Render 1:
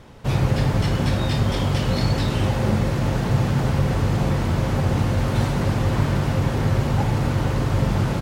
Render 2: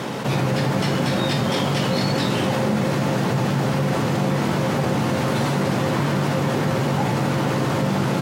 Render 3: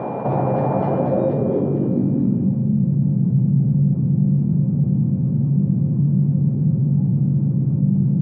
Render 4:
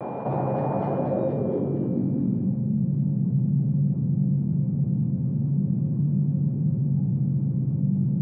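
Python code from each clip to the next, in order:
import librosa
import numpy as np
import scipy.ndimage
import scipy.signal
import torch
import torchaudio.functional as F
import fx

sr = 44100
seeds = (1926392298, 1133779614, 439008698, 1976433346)

y1 = scipy.signal.sosfilt(scipy.signal.butter(4, 150.0, 'highpass', fs=sr, output='sos'), x)
y1 = fx.doubler(y1, sr, ms=15.0, db=-11.0)
y1 = fx.env_flatten(y1, sr, amount_pct=70)
y2 = fx.high_shelf(y1, sr, hz=7400.0, db=-11.5)
y2 = y2 + 10.0 ** (-31.0 / 20.0) * np.sin(2.0 * np.pi * 2400.0 * np.arange(len(y2)) / sr)
y2 = fx.filter_sweep_lowpass(y2, sr, from_hz=750.0, to_hz=170.0, start_s=0.87, end_s=2.67, q=2.5)
y3 = fx.vibrato(y2, sr, rate_hz=0.37, depth_cents=26.0)
y3 = y3 * 10.0 ** (-6.0 / 20.0)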